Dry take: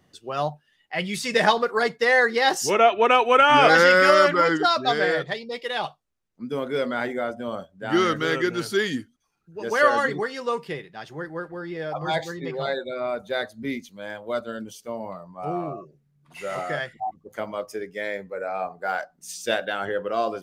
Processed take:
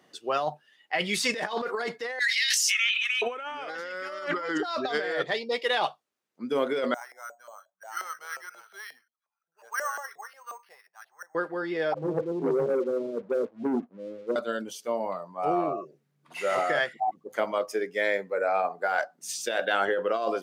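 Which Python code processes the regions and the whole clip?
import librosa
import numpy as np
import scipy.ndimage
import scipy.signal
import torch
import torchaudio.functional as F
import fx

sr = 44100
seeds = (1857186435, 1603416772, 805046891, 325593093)

y = fx.chain(x, sr, fx.steep_highpass(hz=2000.0, slope=48),
    fx.sustainer(db_per_s=24.0), at=(2.19, 3.22))
y = fx.chain(y, sr, fx.tone_stack(knobs='10-0-10'),
    fx.filter_lfo_bandpass(shape='saw_up', hz=5.6, low_hz=600.0, high_hz=1600.0, q=3.6),
    fx.resample_bad(factor=6, down='filtered', up='hold'), at=(6.94, 11.35))
y = fx.chain(y, sr, fx.steep_lowpass(hz=510.0, slope=72),
    fx.leveller(passes=2),
    fx.band_widen(depth_pct=100), at=(11.94, 14.36))
y = scipy.signal.sosfilt(scipy.signal.butter(2, 300.0, 'highpass', fs=sr, output='sos'), y)
y = fx.high_shelf(y, sr, hz=7300.0, db=-4.5)
y = fx.over_compress(y, sr, threshold_db=-28.0, ratio=-1.0)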